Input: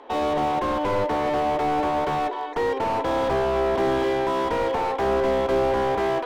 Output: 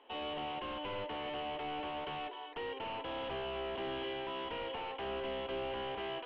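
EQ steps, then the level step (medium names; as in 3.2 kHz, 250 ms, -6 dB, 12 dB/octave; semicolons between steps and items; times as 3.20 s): four-pole ladder low-pass 3.1 kHz, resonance 80%; -5.5 dB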